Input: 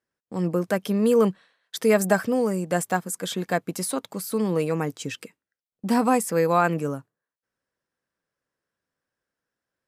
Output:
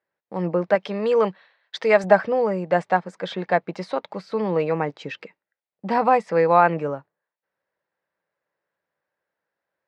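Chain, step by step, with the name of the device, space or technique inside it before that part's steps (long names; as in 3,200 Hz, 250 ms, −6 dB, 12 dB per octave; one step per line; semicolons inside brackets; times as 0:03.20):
guitar cabinet (loudspeaker in its box 110–4,000 Hz, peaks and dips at 120 Hz −8 dB, 250 Hz −10 dB, 590 Hz +6 dB, 860 Hz +7 dB, 2,000 Hz +4 dB, 3,200 Hz −4 dB)
0:00.75–0:02.04: spectral tilt +2 dB per octave
level +1.5 dB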